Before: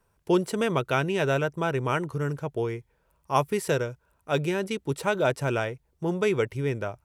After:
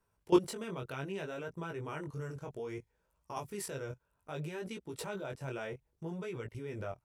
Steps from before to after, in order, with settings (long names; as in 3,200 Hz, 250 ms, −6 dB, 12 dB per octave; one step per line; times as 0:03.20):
0:02.11–0:03.57: parametric band 6,600 Hz +5.5 dB 0.97 octaves
output level in coarse steps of 19 dB
chorus effect 0.63 Hz, delay 17 ms, depth 5.9 ms
level +1 dB